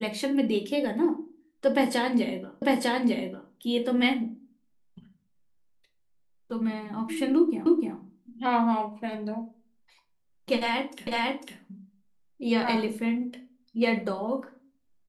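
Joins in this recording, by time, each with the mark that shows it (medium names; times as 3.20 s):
2.62 s: repeat of the last 0.9 s
7.66 s: repeat of the last 0.3 s
11.07 s: repeat of the last 0.5 s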